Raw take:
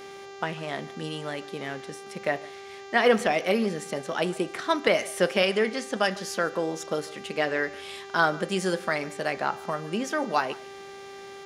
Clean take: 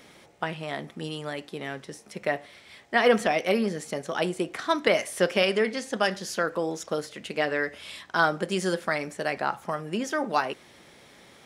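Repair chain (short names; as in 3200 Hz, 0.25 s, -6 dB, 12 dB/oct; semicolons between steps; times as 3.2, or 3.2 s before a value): de-hum 394.4 Hz, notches 18; inverse comb 0.148 s -21 dB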